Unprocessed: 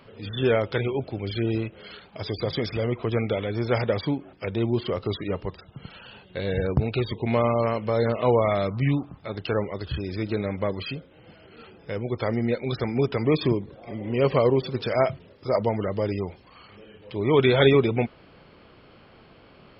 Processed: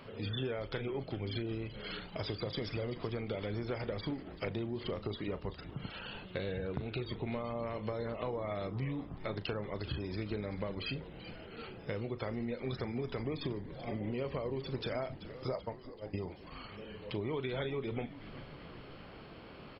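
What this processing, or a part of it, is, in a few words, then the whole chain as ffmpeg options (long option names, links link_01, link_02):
serial compression, leveller first: -filter_complex "[0:a]asplit=3[link_01][link_02][link_03];[link_01]afade=type=out:start_time=15.55:duration=0.02[link_04];[link_02]agate=range=-31dB:threshold=-20dB:ratio=16:detection=peak,afade=type=in:start_time=15.55:duration=0.02,afade=type=out:start_time=16.13:duration=0.02[link_05];[link_03]afade=type=in:start_time=16.13:duration=0.02[link_06];[link_04][link_05][link_06]amix=inputs=3:normalize=0,acompressor=threshold=-23dB:ratio=2.5,acompressor=threshold=-35dB:ratio=6,asplit=2[link_07][link_08];[link_08]adelay=38,volume=-13.5dB[link_09];[link_07][link_09]amix=inputs=2:normalize=0,asplit=8[link_10][link_11][link_12][link_13][link_14][link_15][link_16][link_17];[link_11]adelay=384,afreqshift=-140,volume=-13.5dB[link_18];[link_12]adelay=768,afreqshift=-280,volume=-17.8dB[link_19];[link_13]adelay=1152,afreqshift=-420,volume=-22.1dB[link_20];[link_14]adelay=1536,afreqshift=-560,volume=-26.4dB[link_21];[link_15]adelay=1920,afreqshift=-700,volume=-30.7dB[link_22];[link_16]adelay=2304,afreqshift=-840,volume=-35dB[link_23];[link_17]adelay=2688,afreqshift=-980,volume=-39.3dB[link_24];[link_10][link_18][link_19][link_20][link_21][link_22][link_23][link_24]amix=inputs=8:normalize=0"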